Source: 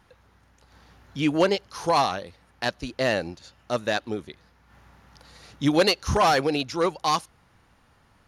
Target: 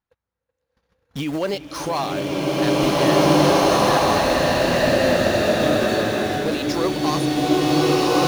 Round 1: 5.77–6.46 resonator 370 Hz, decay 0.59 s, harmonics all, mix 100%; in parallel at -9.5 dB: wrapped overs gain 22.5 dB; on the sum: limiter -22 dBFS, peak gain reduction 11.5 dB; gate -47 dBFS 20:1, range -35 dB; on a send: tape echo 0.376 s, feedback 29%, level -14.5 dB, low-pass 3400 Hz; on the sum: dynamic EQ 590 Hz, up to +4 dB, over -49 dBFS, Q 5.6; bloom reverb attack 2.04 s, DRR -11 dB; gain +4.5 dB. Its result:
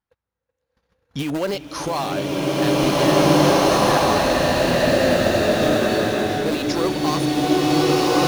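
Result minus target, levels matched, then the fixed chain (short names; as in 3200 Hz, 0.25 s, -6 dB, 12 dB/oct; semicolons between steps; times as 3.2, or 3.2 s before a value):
wrapped overs: distortion -10 dB
5.77–6.46 resonator 370 Hz, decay 0.59 s, harmonics all, mix 100%; in parallel at -9.5 dB: wrapped overs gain 31 dB; on the sum: limiter -22 dBFS, peak gain reduction 11.5 dB; gate -47 dBFS 20:1, range -35 dB; on a send: tape echo 0.376 s, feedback 29%, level -14.5 dB, low-pass 3400 Hz; on the sum: dynamic EQ 590 Hz, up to +4 dB, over -49 dBFS, Q 5.6; bloom reverb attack 2.04 s, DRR -11 dB; gain +4.5 dB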